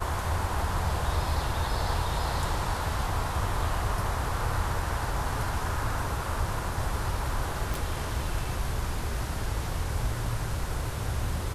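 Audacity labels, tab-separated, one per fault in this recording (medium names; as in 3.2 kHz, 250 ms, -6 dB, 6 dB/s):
7.740000	7.740000	pop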